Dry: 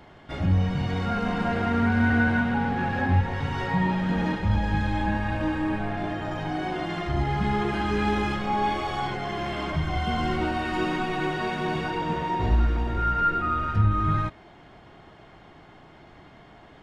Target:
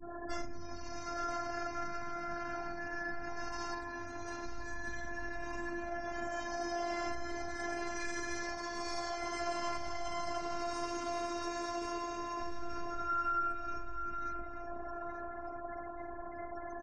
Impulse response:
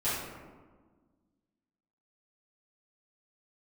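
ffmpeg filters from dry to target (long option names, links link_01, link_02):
-filter_complex "[0:a]highshelf=frequency=4500:width_type=q:width=3:gain=10.5,asplit=2[link_01][link_02];[link_02]acrusher=bits=3:mode=log:mix=0:aa=0.000001,volume=-11dB[link_03];[link_01][link_03]amix=inputs=2:normalize=0[link_04];[1:a]atrim=start_sample=2205,asetrate=83790,aresample=44100[link_05];[link_04][link_05]afir=irnorm=-1:irlink=0,alimiter=limit=-13.5dB:level=0:latency=1:release=24,afftfilt=real='re*gte(hypot(re,im),0.01)':imag='im*gte(hypot(re,im),0.01)':win_size=1024:overlap=0.75,acompressor=threshold=-35dB:ratio=12,highpass=59,asplit=2[link_06][link_07];[link_07]adelay=882,lowpass=frequency=4300:poles=1,volume=-8dB,asplit=2[link_08][link_09];[link_09]adelay=882,lowpass=frequency=4300:poles=1,volume=0.35,asplit=2[link_10][link_11];[link_11]adelay=882,lowpass=frequency=4300:poles=1,volume=0.35,asplit=2[link_12][link_13];[link_13]adelay=882,lowpass=frequency=4300:poles=1,volume=0.35[link_14];[link_08][link_10][link_12][link_14]amix=inputs=4:normalize=0[link_15];[link_06][link_15]amix=inputs=2:normalize=0,adynamicequalizer=threshold=0.00224:dfrequency=250:dqfactor=0.75:tfrequency=250:tqfactor=0.75:attack=5:release=100:ratio=0.375:range=4:mode=cutabove:tftype=bell,afftfilt=real='hypot(re,im)*cos(PI*b)':imag='0':win_size=512:overlap=0.75,volume=6.5dB"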